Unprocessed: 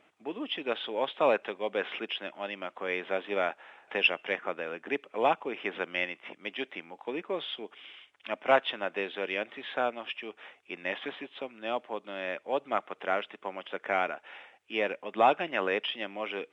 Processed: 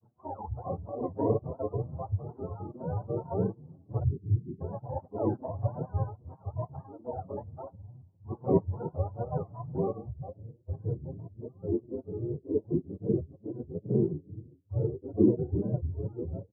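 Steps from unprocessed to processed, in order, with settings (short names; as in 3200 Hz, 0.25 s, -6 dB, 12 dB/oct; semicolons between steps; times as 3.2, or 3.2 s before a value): spectrum mirrored in octaves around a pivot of 500 Hz; spectral delete 4.01–4.6, 420–1800 Hz; grains 0.1 s, spray 18 ms, pitch spread up and down by 3 st; low-pass sweep 910 Hz -> 370 Hz, 9.82–10.83; endless flanger 6.7 ms +2.3 Hz; gain +1.5 dB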